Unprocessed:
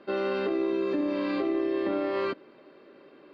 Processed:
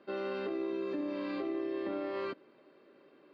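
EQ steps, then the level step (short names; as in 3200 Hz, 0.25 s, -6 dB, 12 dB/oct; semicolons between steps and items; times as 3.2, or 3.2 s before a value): HPF 47 Hz; -8.0 dB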